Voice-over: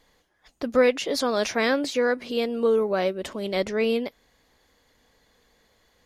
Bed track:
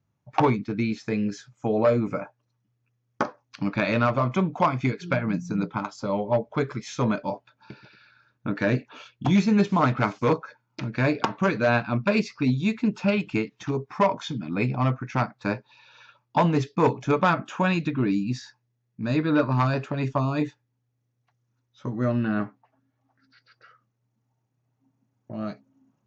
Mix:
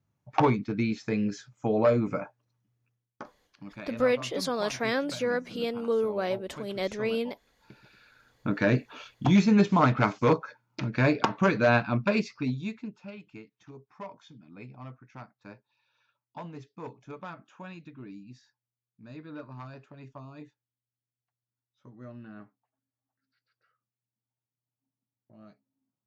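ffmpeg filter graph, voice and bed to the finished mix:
-filter_complex "[0:a]adelay=3250,volume=-5.5dB[a];[1:a]volume=15dB,afade=t=out:st=2.84:d=0.27:silence=0.16788,afade=t=in:st=7.51:d=0.79:silence=0.141254,afade=t=out:st=11.75:d=1.23:silence=0.1[b];[a][b]amix=inputs=2:normalize=0"

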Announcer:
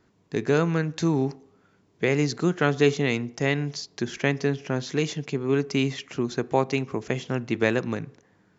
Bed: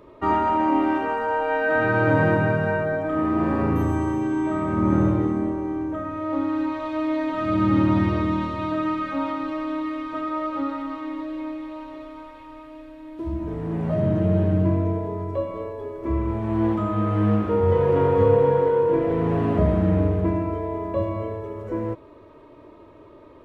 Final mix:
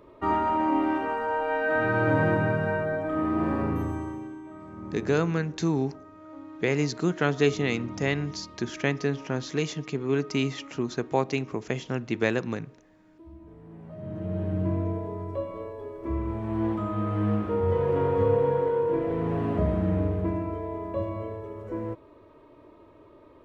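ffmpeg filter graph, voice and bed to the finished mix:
-filter_complex "[0:a]adelay=4600,volume=-2.5dB[a];[1:a]volume=9.5dB,afade=t=out:st=3.5:d=0.91:silence=0.177828,afade=t=in:st=13.97:d=0.82:silence=0.211349[b];[a][b]amix=inputs=2:normalize=0"

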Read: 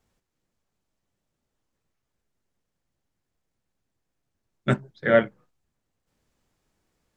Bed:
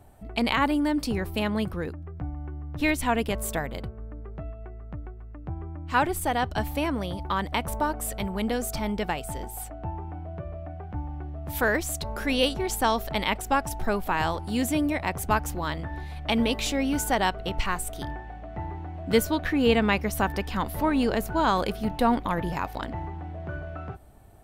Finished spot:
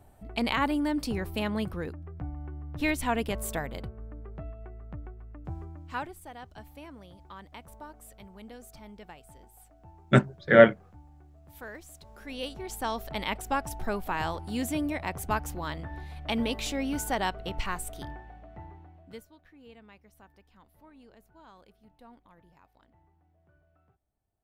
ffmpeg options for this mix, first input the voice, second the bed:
-filter_complex "[0:a]adelay=5450,volume=3dB[a];[1:a]volume=10.5dB,afade=t=out:st=5.52:d=0.63:silence=0.16788,afade=t=in:st=12.1:d=1.27:silence=0.199526,afade=t=out:st=17.88:d=1.38:silence=0.0501187[b];[a][b]amix=inputs=2:normalize=0"

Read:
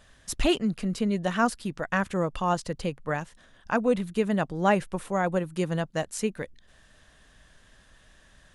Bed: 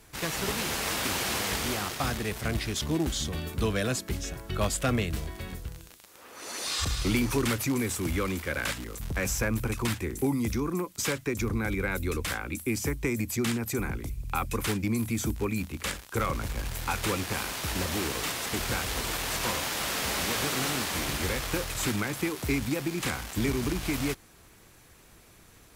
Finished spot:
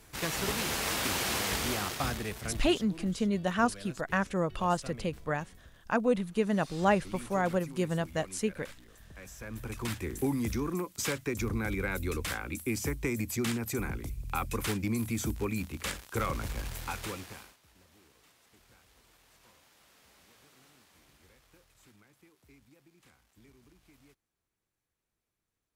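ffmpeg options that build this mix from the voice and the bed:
-filter_complex "[0:a]adelay=2200,volume=-3dB[a];[1:a]volume=14.5dB,afade=t=out:st=1.92:d=0.97:silence=0.133352,afade=t=in:st=9.37:d=0.76:silence=0.158489,afade=t=out:st=16.52:d=1.05:silence=0.0354813[b];[a][b]amix=inputs=2:normalize=0"

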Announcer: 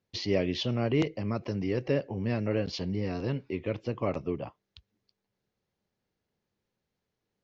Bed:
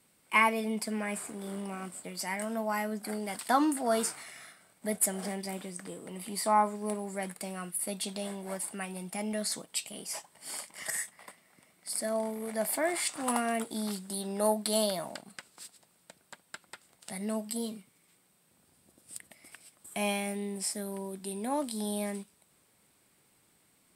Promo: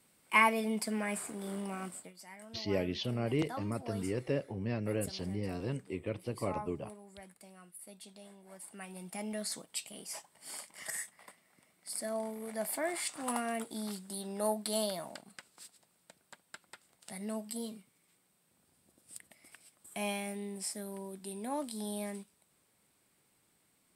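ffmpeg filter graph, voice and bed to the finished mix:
-filter_complex "[0:a]adelay=2400,volume=-5.5dB[a];[1:a]volume=10.5dB,afade=t=out:st=1.93:d=0.2:silence=0.16788,afade=t=in:st=8.51:d=0.59:silence=0.266073[b];[a][b]amix=inputs=2:normalize=0"

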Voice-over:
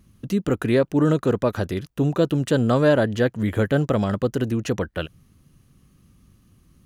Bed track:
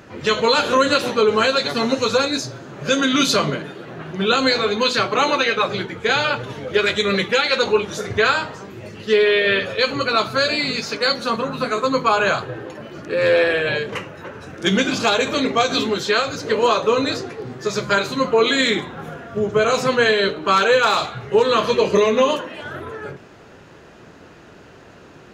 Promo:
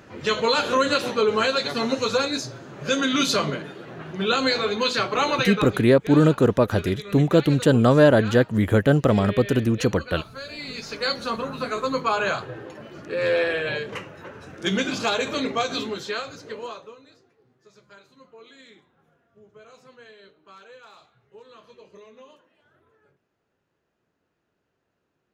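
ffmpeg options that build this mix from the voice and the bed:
-filter_complex "[0:a]adelay=5150,volume=2.5dB[a];[1:a]volume=8dB,afade=t=out:st=5.43:d=0.45:silence=0.199526,afade=t=in:st=10.48:d=0.61:silence=0.237137,afade=t=out:st=15.44:d=1.54:silence=0.0501187[b];[a][b]amix=inputs=2:normalize=0"

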